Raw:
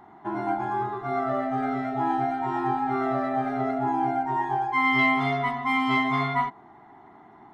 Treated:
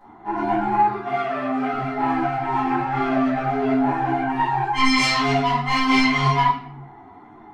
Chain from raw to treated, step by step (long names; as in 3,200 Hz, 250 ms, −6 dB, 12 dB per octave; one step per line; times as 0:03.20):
phase distortion by the signal itself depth 0.21 ms
0:00.78–0:01.73: high-pass filter 310 Hz 6 dB per octave
rectangular room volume 120 cubic metres, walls mixed, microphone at 2 metres
string-ensemble chorus